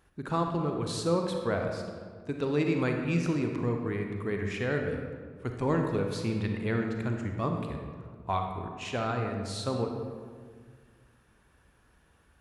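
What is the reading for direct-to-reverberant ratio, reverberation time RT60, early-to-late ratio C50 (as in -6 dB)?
3.0 dB, 1.8 s, 4.0 dB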